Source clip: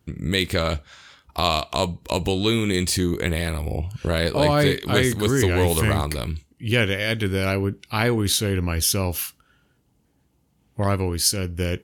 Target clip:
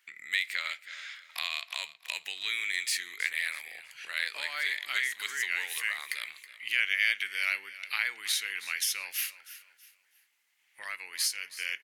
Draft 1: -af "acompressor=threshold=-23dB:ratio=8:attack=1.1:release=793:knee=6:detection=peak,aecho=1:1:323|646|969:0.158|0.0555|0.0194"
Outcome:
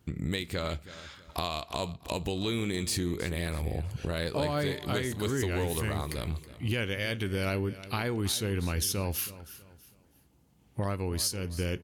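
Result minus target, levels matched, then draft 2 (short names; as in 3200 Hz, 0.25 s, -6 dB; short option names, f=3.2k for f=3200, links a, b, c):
2000 Hz band -8.0 dB
-af "acompressor=threshold=-23dB:ratio=8:attack=1.1:release=793:knee=6:detection=peak,highpass=f=2k:t=q:w=4,aecho=1:1:323|646|969:0.158|0.0555|0.0194"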